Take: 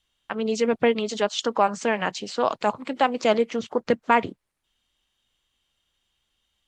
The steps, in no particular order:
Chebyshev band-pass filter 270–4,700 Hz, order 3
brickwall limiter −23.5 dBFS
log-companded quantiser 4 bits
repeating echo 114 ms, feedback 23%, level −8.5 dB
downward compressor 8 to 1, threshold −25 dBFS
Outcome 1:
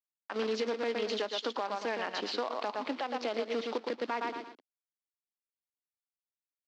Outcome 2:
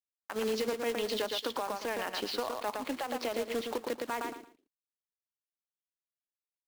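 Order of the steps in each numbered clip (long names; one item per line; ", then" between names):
repeating echo, then log-companded quantiser, then downward compressor, then Chebyshev band-pass filter, then brickwall limiter
Chebyshev band-pass filter, then log-companded quantiser, then downward compressor, then repeating echo, then brickwall limiter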